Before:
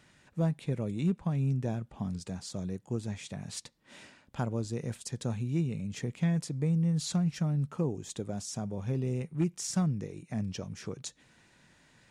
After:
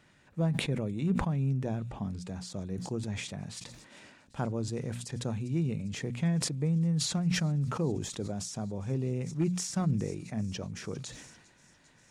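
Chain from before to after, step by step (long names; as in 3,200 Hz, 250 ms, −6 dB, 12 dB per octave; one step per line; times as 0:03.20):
high-shelf EQ 3,800 Hz −5.5 dB
mains-hum notches 60/120/180/240 Hz
on a send: delay with a high-pass on its return 399 ms, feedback 84%, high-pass 4,000 Hz, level −19 dB
on the sum: level that may fall only so fast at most 50 dB per second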